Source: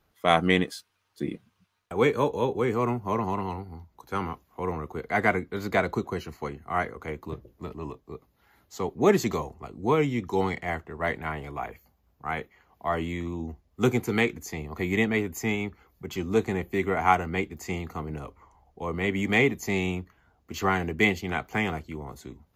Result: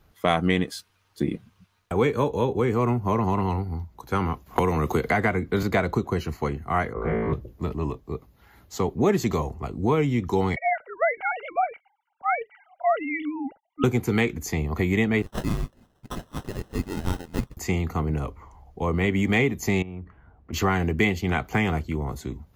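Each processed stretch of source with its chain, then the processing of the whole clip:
0:04.46–0:05.63: noise gate −57 dBFS, range −21 dB + multiband upward and downward compressor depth 100%
0:06.93–0:07.33: low-pass filter 1,400 Hz + flutter between parallel walls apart 3.1 metres, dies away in 1.3 s
0:10.56–0:13.84: three sine waves on the formant tracks + comb filter 1.4 ms, depth 80%
0:15.22–0:17.57: Butterworth high-pass 1,800 Hz + sample-rate reduction 2,300 Hz
0:19.82–0:20.53: low-pass filter 1,700 Hz + downward compressor 10 to 1, threshold −40 dBFS
whole clip: low-shelf EQ 170 Hz +8.5 dB; downward compressor 2.5 to 1, threshold −27 dBFS; level +6 dB

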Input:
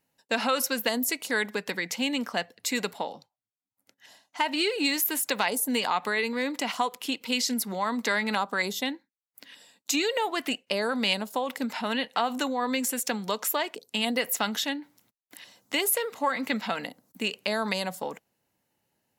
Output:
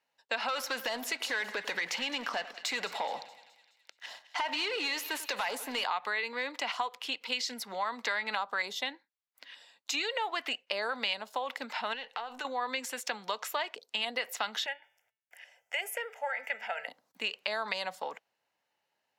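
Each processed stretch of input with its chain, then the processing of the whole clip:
0:00.48–0:05.84: downward compressor 2.5 to 1, threshold −36 dBFS + leveller curve on the samples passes 3 + echo with a time of its own for lows and highs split 1,700 Hz, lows 94 ms, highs 211 ms, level −16 dB
0:11.93–0:12.45: gain on one half-wave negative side −3 dB + downward compressor, threshold −33 dBFS + hollow resonant body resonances 450/840/1,500/2,700 Hz, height 7 dB
0:14.66–0:16.88: parametric band 180 Hz −11.5 dB 0.75 octaves + phaser with its sweep stopped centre 1,100 Hz, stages 6 + hum removal 221.2 Hz, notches 17
whole clip: three-way crossover with the lows and the highs turned down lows −18 dB, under 530 Hz, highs −16 dB, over 5,500 Hz; mains-hum notches 60/120 Hz; downward compressor 2.5 to 1, threshold −30 dBFS

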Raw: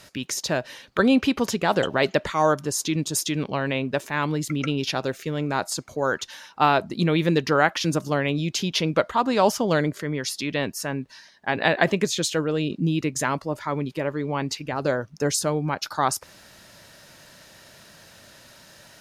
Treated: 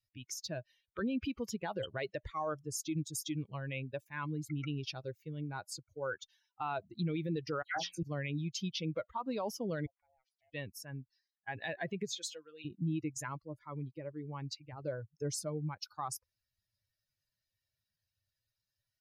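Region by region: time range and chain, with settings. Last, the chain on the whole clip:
0:07.62–0:08.03: mains-hum notches 60/120/180/240 Hz + double-tracking delay 23 ms −4.5 dB + all-pass dispersion lows, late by 138 ms, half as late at 2,100 Hz
0:09.86–0:10.53: ring modulation 390 Hz + three-way crossover with the lows and the highs turned down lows −20 dB, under 550 Hz, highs −20 dB, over 2,100 Hz + downward compressor 2 to 1, threshold −43 dBFS
0:12.16–0:12.65: high-pass filter 1,300 Hz 6 dB per octave + comb filter 5.9 ms, depth 53%
whole clip: spectral dynamics exaggerated over time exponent 2; low-shelf EQ 220 Hz +5.5 dB; brickwall limiter −20.5 dBFS; level −7.5 dB

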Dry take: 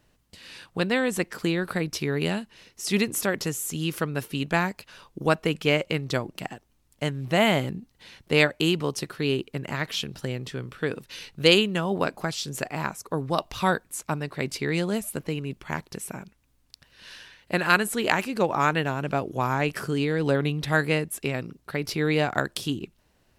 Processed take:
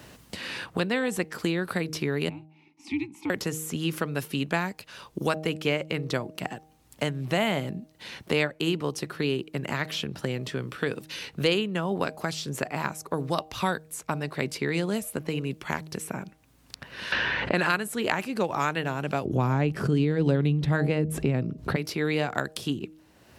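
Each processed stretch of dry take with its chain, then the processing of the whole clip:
0:02.29–0:03.30: frequency shifter −110 Hz + formant filter u
0:17.12–0:17.75: low-pass that shuts in the quiet parts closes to 2,100 Hz, open at −19 dBFS + envelope flattener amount 70%
0:19.25–0:21.76: spectral tilt −4.5 dB per octave + background raised ahead of every attack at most 130 dB per second
whole clip: high-pass filter 70 Hz; hum removal 156.5 Hz, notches 5; multiband upward and downward compressor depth 70%; level −3 dB

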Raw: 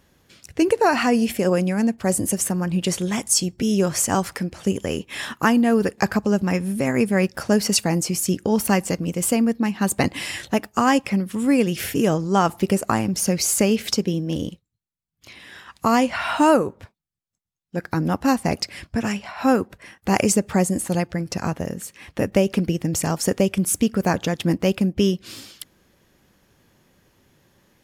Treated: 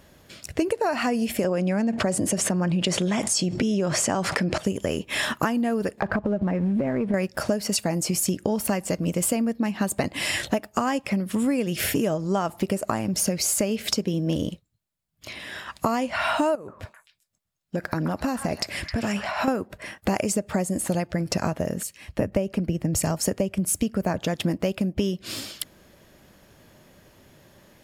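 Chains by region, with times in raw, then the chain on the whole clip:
0:01.44–0:04.58: high-pass filter 110 Hz + high-frequency loss of the air 66 metres + envelope flattener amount 70%
0:06.00–0:07.14: low-pass filter 1,500 Hz + downward compressor, threshold −24 dBFS + leveller curve on the samples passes 1
0:16.55–0:19.48: downward compressor, threshold −26 dBFS + echo through a band-pass that steps 131 ms, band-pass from 1,400 Hz, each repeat 1.4 octaves, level −5 dB
0:21.83–0:24.19: low-shelf EQ 140 Hz +7.5 dB + notch filter 3,500 Hz, Q 14 + multiband upward and downward expander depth 40%
whole clip: parametric band 620 Hz +9 dB 0.2 octaves; notch filter 6,000 Hz, Q 19; downward compressor 12 to 1, threshold −26 dBFS; level +5.5 dB

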